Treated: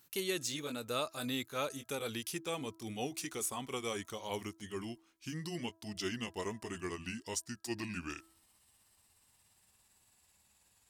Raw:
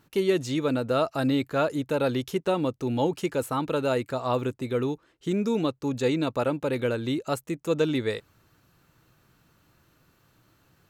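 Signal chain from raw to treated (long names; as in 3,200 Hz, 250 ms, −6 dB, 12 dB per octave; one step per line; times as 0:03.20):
pitch glide at a constant tempo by −8.5 semitones starting unshifted
first-order pre-emphasis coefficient 0.9
hum removal 327.2 Hz, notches 5
level +5 dB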